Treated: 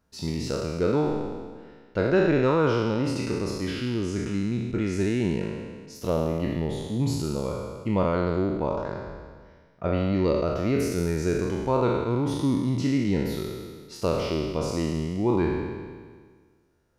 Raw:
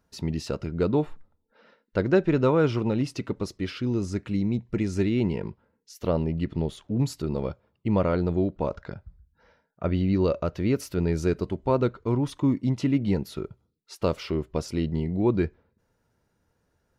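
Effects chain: spectral sustain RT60 1.66 s; trim -2.5 dB

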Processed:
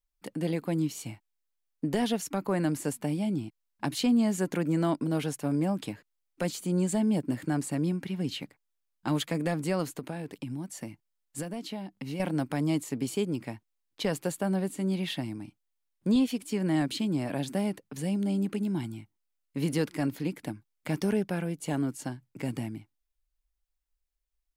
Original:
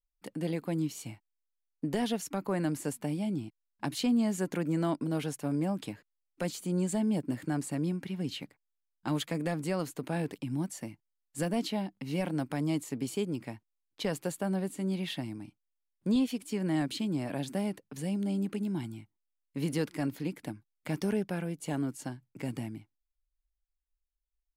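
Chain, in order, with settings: 9.98–12.20 s: compression 6:1, threshold -36 dBFS, peak gain reduction 10.5 dB; trim +3 dB

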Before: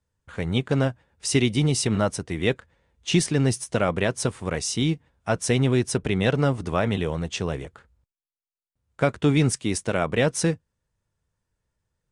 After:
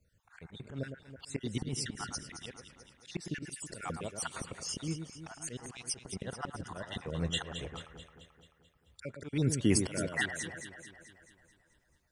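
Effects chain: random holes in the spectrogram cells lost 47%; in parallel at +3 dB: compression 12:1, threshold -32 dBFS, peak gain reduction 17.5 dB; on the sum: slow attack 674 ms; echo whose repeats swap between lows and highs 109 ms, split 1.8 kHz, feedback 74%, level -7 dB

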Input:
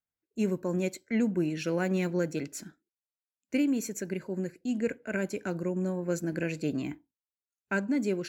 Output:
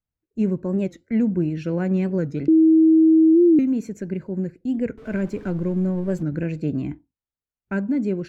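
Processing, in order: 4.98–6.24 s: jump at every zero crossing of -41.5 dBFS; RIAA curve playback; 2.48–3.60 s: bleep 320 Hz -10.5 dBFS; warped record 45 rpm, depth 160 cents

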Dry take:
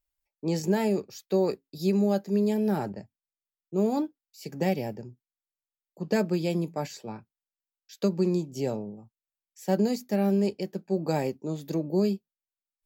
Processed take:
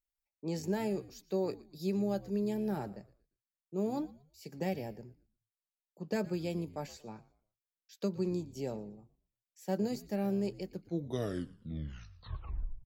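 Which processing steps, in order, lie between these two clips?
tape stop on the ending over 2.16 s; frequency-shifting echo 116 ms, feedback 31%, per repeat -77 Hz, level -19 dB; trim -8.5 dB

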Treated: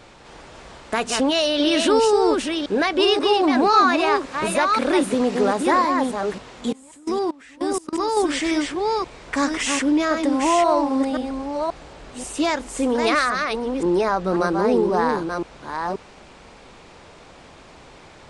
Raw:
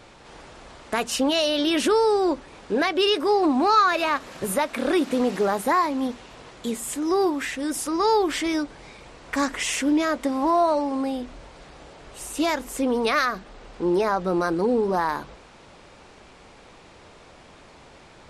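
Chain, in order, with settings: chunks repeated in reverse 532 ms, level -4.5 dB; 6.72–8.17 s: level held to a coarse grid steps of 24 dB; resampled via 22.05 kHz; trim +2 dB

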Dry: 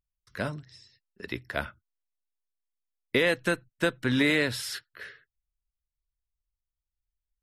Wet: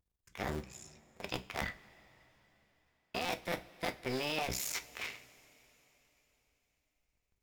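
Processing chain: cycle switcher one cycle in 2, muted; reverse; compression 6:1, threshold -38 dBFS, peak gain reduction 17 dB; reverse; formant shift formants +5 st; two-slope reverb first 0.28 s, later 4.1 s, from -20 dB, DRR 8 dB; trim +4 dB

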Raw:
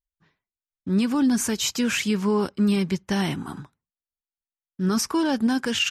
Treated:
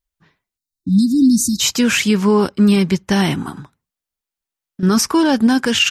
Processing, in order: 0.57–1.60 s: spectral selection erased 340–3600 Hz; 3.49–4.83 s: compression 4:1, threshold -37 dBFS, peak gain reduction 10 dB; trim +8.5 dB

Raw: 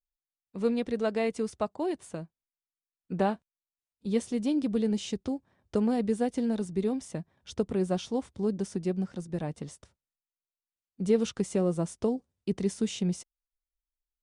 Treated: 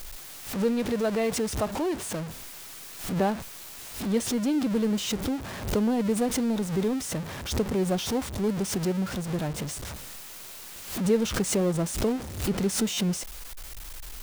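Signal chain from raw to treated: jump at every zero crossing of -31 dBFS; buffer glitch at 12.93 s, samples 256, times 7; swell ahead of each attack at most 95 dB/s

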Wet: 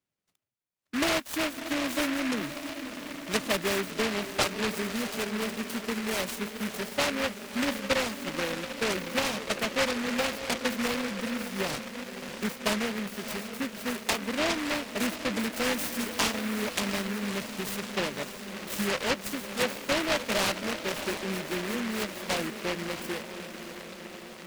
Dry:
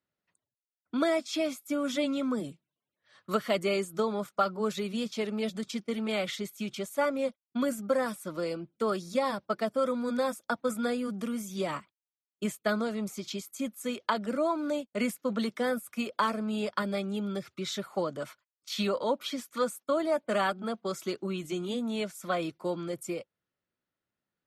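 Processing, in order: 15.52–16.23 s: zero-crossing glitches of -29 dBFS; echo that smears into a reverb 636 ms, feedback 71%, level -10 dB; delay time shaken by noise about 1.7 kHz, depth 0.25 ms

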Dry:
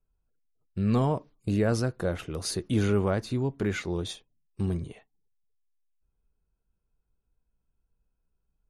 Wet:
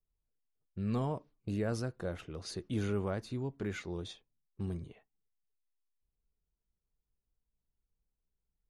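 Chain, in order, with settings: level-controlled noise filter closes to 1.1 kHz, open at -25.5 dBFS; trim -9 dB

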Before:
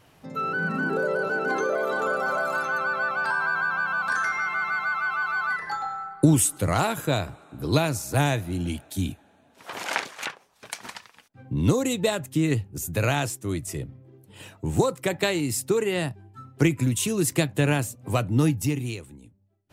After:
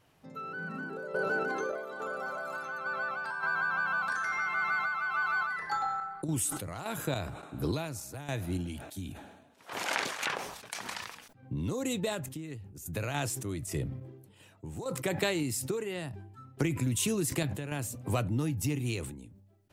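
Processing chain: compression 6:1, threshold -26 dBFS, peak gain reduction 13 dB; random-step tremolo, depth 80%; decay stretcher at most 54 dB/s

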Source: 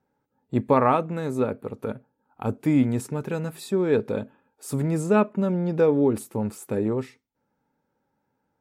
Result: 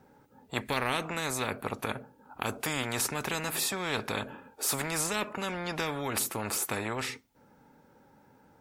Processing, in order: spectrum-flattening compressor 4:1; trim -6.5 dB

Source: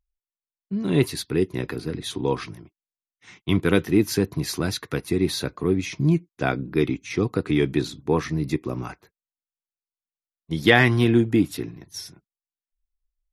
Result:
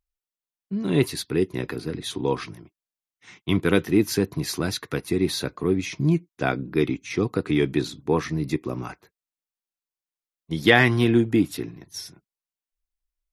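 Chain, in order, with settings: bass shelf 83 Hz -6 dB

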